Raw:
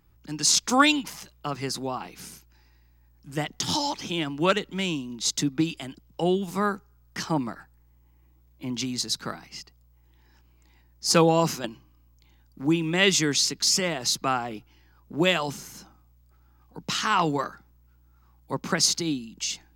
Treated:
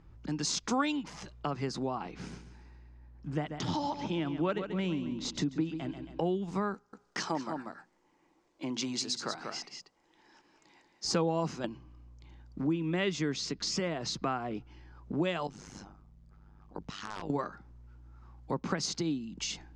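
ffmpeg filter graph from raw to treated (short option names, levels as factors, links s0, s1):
-filter_complex "[0:a]asettb=1/sr,asplit=3[s0][s1][s2];[s0]atrim=end=2.114[s3];[s1]atrim=start=2.11:end=6.24,asetpts=PTS-STARTPTS,afade=t=in:d=0.004:c=qsin,afade=t=out:st=4.126:d=0.004:c=qsin,lowpass=f=3000:p=1,aecho=1:1:137|274|411|548:0.266|0.0984|0.0364|0.0135,atrim=end_sample=182133[s4];[s2]atrim=start=6.236[s5];[s3][s4]acrossfade=d=0.004:c1=hsin:c2=qsin[s6];[s6][s5]acrossfade=d=0.004:c1=qsin:c2=hsin,asettb=1/sr,asplit=3[s7][s8][s9];[s7]atrim=end=6.744[s10];[s8]atrim=start=6.74:end=11.05,asetpts=PTS-STARTPTS,afade=t=in:d=0.004:c=qsin,afade=t=out:st=4.306:d=0.004:c=qsin,bass=f=250:g=-12,treble=f=4000:g=6,bandreject=f=60:t=h:w=6,bandreject=f=120:t=h:w=6,bandreject=f=180:t=h:w=6,bandreject=f=240:t=h:w=6,aecho=1:1:189:0.422,atrim=end_sample=190071[s11];[s9]atrim=start=11.046[s12];[s10][s11]acrossfade=d=0.004:c1=hsin:c2=qsin[s13];[s13][s12]acrossfade=d=0.004:c1=qsin:c2=hsin,asettb=1/sr,asplit=3[s14][s15][s16];[s14]atrim=end=12.644[s17];[s15]atrim=start=12.64:end=14.55,asetpts=PTS-STARTPTS,afade=t=in:d=0.004:c=qsin,afade=t=out:st=1.906:d=0.004:c=qsin,highshelf=f=8200:g=-10,bandreject=f=840:w=12[s18];[s16]atrim=start=14.546[s19];[s17][s18]acrossfade=d=0.004:c1=hsin:c2=qsin[s20];[s20][s19]acrossfade=d=0.004:c1=qsin:c2=hsin,asettb=1/sr,asplit=3[s21][s22][s23];[s21]atrim=end=15.474[s24];[s22]atrim=start=15.47:end=17.3,asetpts=PTS-STARTPTS,afade=t=in:d=0.004:c=qsin,afade=t=out:st=1.826:d=0.004:c=qsin,aeval=exprs='(mod(4.47*val(0)+1,2)-1)/4.47':c=same,acompressor=threshold=0.0158:ratio=10:attack=3.2:release=140:knee=1:detection=peak,tremolo=f=100:d=0.919[s25];[s23]atrim=start=17.296[s26];[s24][s25]acrossfade=d=0.004:c1=hsin:c2=qsin[s27];[s27][s26]acrossfade=d=0.004:c1=qsin:c2=hsin,lowpass=f=7400:w=0.5412,lowpass=f=7400:w=1.3066,highshelf=f=2000:g=-10.5,acompressor=threshold=0.00891:ratio=2.5,volume=2.11"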